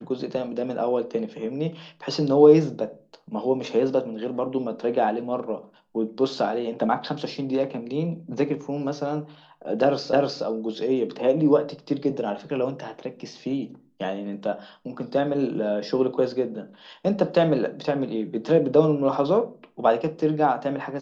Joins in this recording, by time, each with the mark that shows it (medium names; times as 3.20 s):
10.13 s: repeat of the last 0.31 s